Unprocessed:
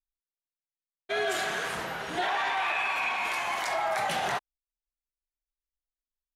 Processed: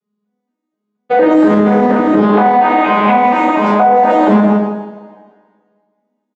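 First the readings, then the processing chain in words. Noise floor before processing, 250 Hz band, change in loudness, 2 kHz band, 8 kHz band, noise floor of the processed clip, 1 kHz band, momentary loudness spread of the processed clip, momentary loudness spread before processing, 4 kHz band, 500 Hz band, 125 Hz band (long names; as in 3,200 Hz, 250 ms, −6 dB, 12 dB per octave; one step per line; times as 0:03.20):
below −85 dBFS, +35.5 dB, +18.5 dB, +8.5 dB, can't be measured, −76 dBFS, +20.0 dB, 6 LU, 6 LU, +2.0 dB, +22.0 dB, +27.0 dB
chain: vocoder with an arpeggio as carrier minor triad, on G#3, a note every 237 ms
tilt shelving filter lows +8.5 dB, about 870 Hz
on a send: repeating echo 159 ms, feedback 25%, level −9 dB
on the sum: coupled-rooms reverb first 0.65 s, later 1.8 s, from −17 dB, DRR −6.5 dB
in parallel at −1 dB: downward compressor, threshold −30 dBFS, peak gain reduction 15.5 dB
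on the sum: high-shelf EQ 2,500 Hz −9 dB
boost into a limiter +14.5 dB
highs frequency-modulated by the lows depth 0.2 ms
level −1 dB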